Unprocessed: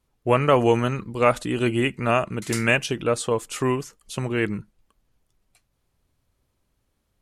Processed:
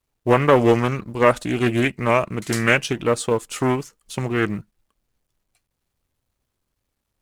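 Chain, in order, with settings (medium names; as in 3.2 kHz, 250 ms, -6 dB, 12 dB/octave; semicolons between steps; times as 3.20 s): companding laws mixed up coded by A; loudspeaker Doppler distortion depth 0.31 ms; trim +3 dB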